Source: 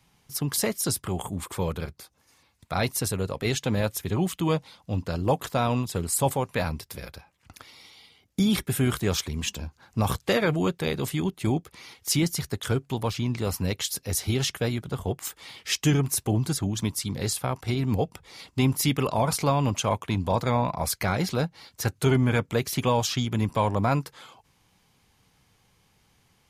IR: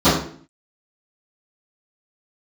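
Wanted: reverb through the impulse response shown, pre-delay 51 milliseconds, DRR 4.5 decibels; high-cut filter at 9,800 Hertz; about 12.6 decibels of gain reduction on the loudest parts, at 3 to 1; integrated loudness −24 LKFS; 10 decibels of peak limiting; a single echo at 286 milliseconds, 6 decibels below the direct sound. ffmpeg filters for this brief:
-filter_complex "[0:a]lowpass=9800,acompressor=threshold=-36dB:ratio=3,alimiter=level_in=6dB:limit=-24dB:level=0:latency=1,volume=-6dB,aecho=1:1:286:0.501,asplit=2[link_01][link_02];[1:a]atrim=start_sample=2205,adelay=51[link_03];[link_02][link_03]afir=irnorm=-1:irlink=0,volume=-29.5dB[link_04];[link_01][link_04]amix=inputs=2:normalize=0,volume=12.5dB"

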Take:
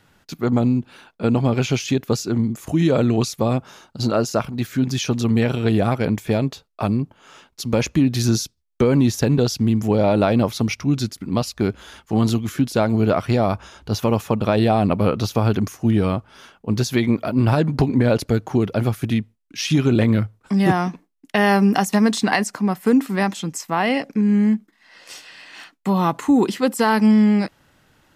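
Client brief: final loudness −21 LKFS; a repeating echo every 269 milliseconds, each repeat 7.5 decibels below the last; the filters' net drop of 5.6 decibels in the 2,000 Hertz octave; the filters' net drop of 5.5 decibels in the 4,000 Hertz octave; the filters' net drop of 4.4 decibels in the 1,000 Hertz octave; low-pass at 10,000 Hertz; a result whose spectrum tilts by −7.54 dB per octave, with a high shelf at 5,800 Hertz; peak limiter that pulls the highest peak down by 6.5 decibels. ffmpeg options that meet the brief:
ffmpeg -i in.wav -af "lowpass=10000,equalizer=frequency=1000:width_type=o:gain=-5,equalizer=frequency=2000:width_type=o:gain=-4,equalizer=frequency=4000:width_type=o:gain=-3,highshelf=frequency=5800:gain=-6.5,alimiter=limit=-12dB:level=0:latency=1,aecho=1:1:269|538|807|1076|1345:0.422|0.177|0.0744|0.0312|0.0131,volume=1dB" out.wav

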